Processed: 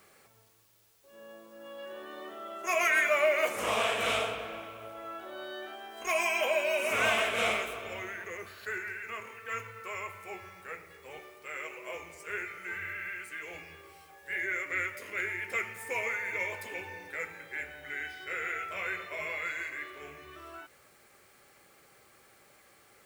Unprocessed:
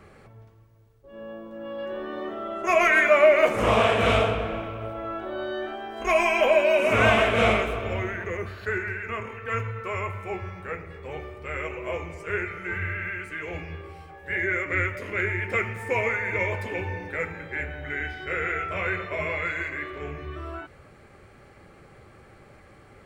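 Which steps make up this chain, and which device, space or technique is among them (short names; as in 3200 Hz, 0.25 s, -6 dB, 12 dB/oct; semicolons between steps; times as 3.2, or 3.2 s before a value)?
turntable without a phono preamp (RIAA curve recording; white noise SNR 32 dB); 11.19–11.95 Bessel high-pass 160 Hz, order 2; gain -8.5 dB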